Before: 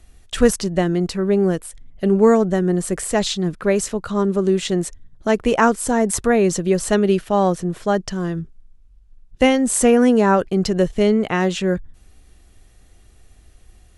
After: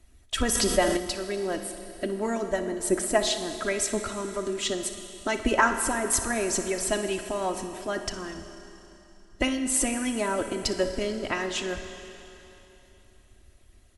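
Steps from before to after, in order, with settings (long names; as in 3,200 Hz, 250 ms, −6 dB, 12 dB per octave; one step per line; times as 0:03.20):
comb filter 3.1 ms, depth 74%
harmonic and percussive parts rebalanced harmonic −13 dB
flutter between parallel walls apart 10.3 metres, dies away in 0.23 s
four-comb reverb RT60 3.2 s, combs from 27 ms, DRR 7.5 dB
0:00.55–0:00.97: envelope flattener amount 50%
level −3 dB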